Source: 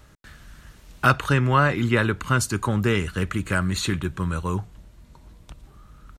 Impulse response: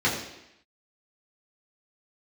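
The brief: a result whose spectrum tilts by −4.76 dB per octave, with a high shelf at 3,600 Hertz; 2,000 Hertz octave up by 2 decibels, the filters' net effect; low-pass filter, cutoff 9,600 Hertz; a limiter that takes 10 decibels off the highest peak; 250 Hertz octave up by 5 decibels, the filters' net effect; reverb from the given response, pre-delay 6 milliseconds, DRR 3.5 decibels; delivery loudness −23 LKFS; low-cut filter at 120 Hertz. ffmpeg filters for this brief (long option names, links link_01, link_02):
-filter_complex "[0:a]highpass=120,lowpass=9600,equalizer=frequency=250:width_type=o:gain=7,equalizer=frequency=2000:width_type=o:gain=5,highshelf=frequency=3600:gain=-9,alimiter=limit=-11.5dB:level=0:latency=1,asplit=2[link_01][link_02];[1:a]atrim=start_sample=2205,adelay=6[link_03];[link_02][link_03]afir=irnorm=-1:irlink=0,volume=-18dB[link_04];[link_01][link_04]amix=inputs=2:normalize=0,volume=-2dB"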